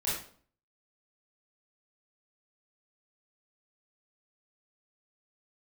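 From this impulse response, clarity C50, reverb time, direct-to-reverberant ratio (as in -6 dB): 1.5 dB, 0.50 s, -9.0 dB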